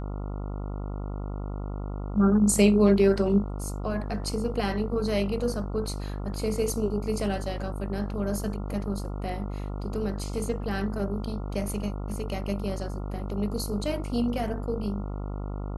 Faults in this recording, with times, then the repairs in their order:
buzz 50 Hz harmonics 28 -33 dBFS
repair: de-hum 50 Hz, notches 28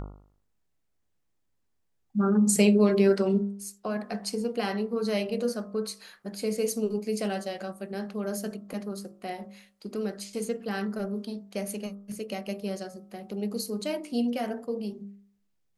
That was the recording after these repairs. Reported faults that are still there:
nothing left

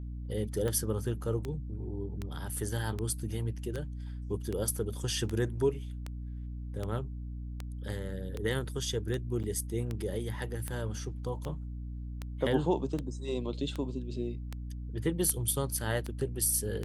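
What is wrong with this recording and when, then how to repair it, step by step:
hum 60 Hz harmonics 5 -39 dBFS
tick 78 rpm -22 dBFS
9.43–9.44 s: dropout 7.7 ms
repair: de-click; de-hum 60 Hz, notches 5; interpolate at 9.43 s, 7.7 ms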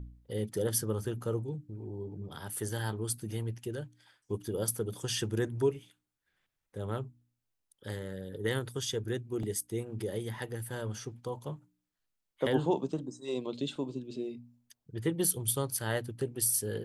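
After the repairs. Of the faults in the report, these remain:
nothing left

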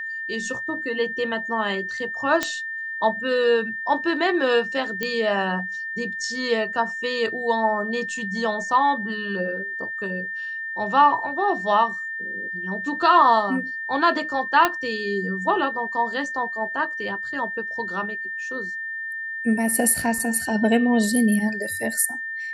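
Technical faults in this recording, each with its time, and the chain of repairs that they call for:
whine 1.8 kHz -28 dBFS
2.43 s: pop -7 dBFS
5.03 s: pop -11 dBFS
14.65 s: pop -4 dBFS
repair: de-click; band-stop 1.8 kHz, Q 30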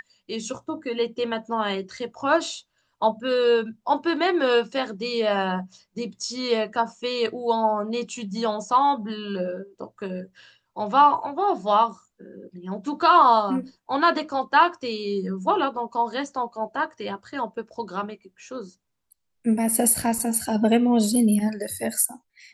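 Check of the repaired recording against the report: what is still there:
nothing left

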